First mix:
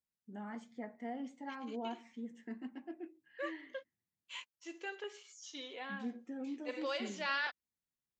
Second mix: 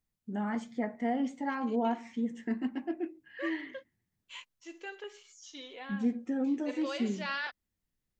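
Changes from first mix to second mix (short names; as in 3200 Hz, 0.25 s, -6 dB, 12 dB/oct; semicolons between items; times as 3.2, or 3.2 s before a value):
first voice +10.5 dB; master: remove HPF 150 Hz 6 dB/oct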